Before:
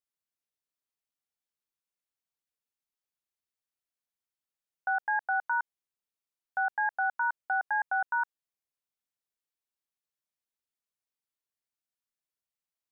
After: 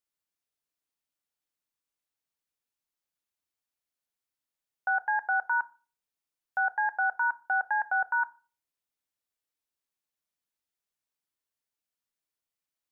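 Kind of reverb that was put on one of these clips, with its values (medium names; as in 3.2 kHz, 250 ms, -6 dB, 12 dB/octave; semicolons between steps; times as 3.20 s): FDN reverb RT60 0.36 s, low-frequency decay 1.35×, high-frequency decay 0.75×, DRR 13.5 dB; trim +1.5 dB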